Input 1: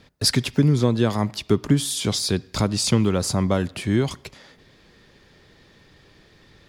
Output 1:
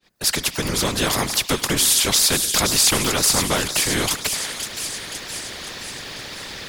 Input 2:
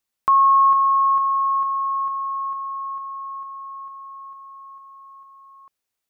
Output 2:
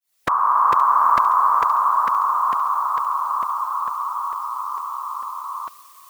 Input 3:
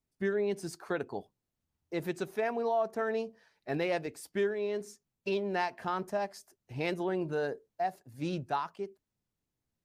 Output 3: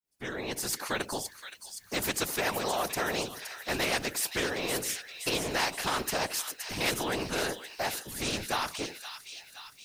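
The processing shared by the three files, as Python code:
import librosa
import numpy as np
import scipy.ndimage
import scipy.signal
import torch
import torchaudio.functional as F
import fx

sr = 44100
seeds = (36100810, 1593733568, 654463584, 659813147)

p1 = fx.fade_in_head(x, sr, length_s=1.1)
p2 = fx.tilt_eq(p1, sr, slope=2.0)
p3 = fx.whisperise(p2, sr, seeds[0])
p4 = p3 + fx.echo_wet_highpass(p3, sr, ms=520, feedback_pct=47, hz=3300.0, wet_db=-10.5, dry=0)
p5 = fx.spectral_comp(p4, sr, ratio=2.0)
y = p5 * librosa.db_to_amplitude(2.5)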